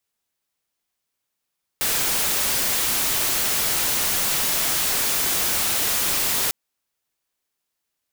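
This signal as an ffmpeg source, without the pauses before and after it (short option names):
-f lavfi -i "anoisesrc=c=white:a=0.138:d=4.7:r=44100:seed=1"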